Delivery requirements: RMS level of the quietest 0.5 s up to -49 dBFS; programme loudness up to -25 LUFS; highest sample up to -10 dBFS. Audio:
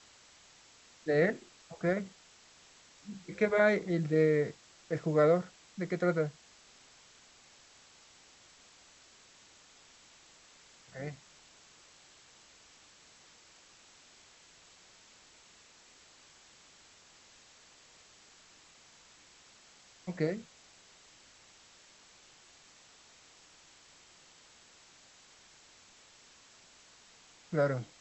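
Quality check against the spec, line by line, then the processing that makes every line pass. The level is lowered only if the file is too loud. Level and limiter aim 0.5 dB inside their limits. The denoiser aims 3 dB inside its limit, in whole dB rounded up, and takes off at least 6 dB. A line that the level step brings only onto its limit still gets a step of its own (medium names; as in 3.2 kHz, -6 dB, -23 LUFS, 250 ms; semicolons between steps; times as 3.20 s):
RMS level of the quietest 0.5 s -60 dBFS: pass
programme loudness -31.5 LUFS: pass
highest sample -14.0 dBFS: pass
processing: none needed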